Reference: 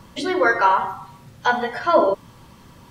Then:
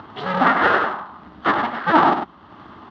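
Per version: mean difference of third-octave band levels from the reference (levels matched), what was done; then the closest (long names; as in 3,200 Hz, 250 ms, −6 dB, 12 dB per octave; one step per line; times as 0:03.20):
7.5 dB: sub-harmonics by changed cycles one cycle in 2, inverted
upward compression, threshold −32 dBFS
loudspeaker in its box 130–3,200 Hz, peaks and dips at 130 Hz −5 dB, 490 Hz −9 dB, 830 Hz +3 dB, 1,200 Hz +6 dB, 2,400 Hz −10 dB
on a send: single-tap delay 100 ms −6.5 dB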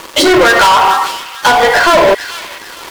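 11.5 dB: Butterworth high-pass 320 Hz 48 dB per octave
downward compressor, threshold −20 dBFS, peak gain reduction 9.5 dB
leveller curve on the samples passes 5
on a send: delay with a high-pass on its return 445 ms, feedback 36%, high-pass 2,200 Hz, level −8 dB
on the sum: level +7 dB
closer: first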